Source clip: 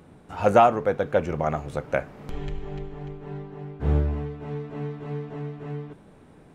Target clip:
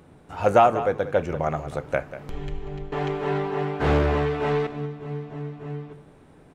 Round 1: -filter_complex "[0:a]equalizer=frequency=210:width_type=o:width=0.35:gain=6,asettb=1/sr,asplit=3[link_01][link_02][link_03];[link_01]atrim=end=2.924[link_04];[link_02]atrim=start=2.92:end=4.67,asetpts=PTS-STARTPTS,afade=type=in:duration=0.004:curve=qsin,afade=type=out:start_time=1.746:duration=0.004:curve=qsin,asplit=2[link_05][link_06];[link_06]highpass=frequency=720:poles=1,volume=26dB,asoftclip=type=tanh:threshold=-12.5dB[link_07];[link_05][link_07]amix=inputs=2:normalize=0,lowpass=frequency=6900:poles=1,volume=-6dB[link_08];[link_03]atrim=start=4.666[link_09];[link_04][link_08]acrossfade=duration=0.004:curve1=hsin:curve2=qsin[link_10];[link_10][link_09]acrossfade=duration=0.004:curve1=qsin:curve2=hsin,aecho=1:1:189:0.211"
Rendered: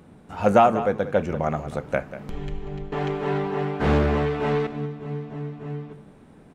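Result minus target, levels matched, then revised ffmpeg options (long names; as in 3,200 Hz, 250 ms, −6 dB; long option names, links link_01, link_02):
250 Hz band +3.0 dB
-filter_complex "[0:a]equalizer=frequency=210:width_type=o:width=0.35:gain=-4.5,asettb=1/sr,asplit=3[link_01][link_02][link_03];[link_01]atrim=end=2.924[link_04];[link_02]atrim=start=2.92:end=4.67,asetpts=PTS-STARTPTS,afade=type=in:duration=0.004:curve=qsin,afade=type=out:start_time=1.746:duration=0.004:curve=qsin,asplit=2[link_05][link_06];[link_06]highpass=frequency=720:poles=1,volume=26dB,asoftclip=type=tanh:threshold=-12.5dB[link_07];[link_05][link_07]amix=inputs=2:normalize=0,lowpass=frequency=6900:poles=1,volume=-6dB[link_08];[link_03]atrim=start=4.666[link_09];[link_04][link_08]acrossfade=duration=0.004:curve1=hsin:curve2=qsin[link_10];[link_10][link_09]acrossfade=duration=0.004:curve1=qsin:curve2=hsin,aecho=1:1:189:0.211"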